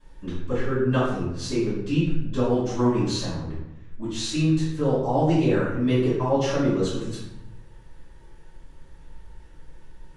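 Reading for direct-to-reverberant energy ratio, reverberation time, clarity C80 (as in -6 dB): -15.0 dB, 0.90 s, 4.0 dB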